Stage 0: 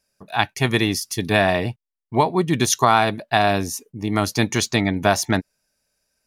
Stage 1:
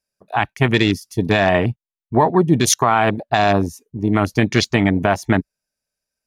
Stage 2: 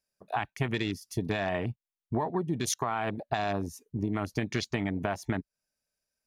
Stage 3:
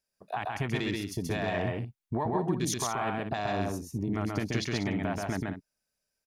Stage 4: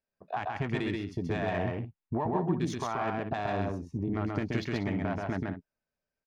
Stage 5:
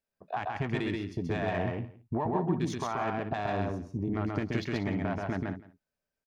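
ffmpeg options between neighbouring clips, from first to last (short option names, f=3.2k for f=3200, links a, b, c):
-af "afwtdn=0.0447,alimiter=limit=-9.5dB:level=0:latency=1:release=64,volume=6dB"
-af "acompressor=threshold=-24dB:ratio=6,volume=-3.5dB"
-af "alimiter=limit=-21.5dB:level=0:latency=1,aecho=1:1:131.2|189.5:0.794|0.282"
-filter_complex "[0:a]adynamicsmooth=sensitivity=1.5:basefreq=2.5k,asplit=2[a][b];[b]adelay=12,volume=-13dB[c];[a][c]amix=inputs=2:normalize=0"
-af "aecho=1:1:169:0.1"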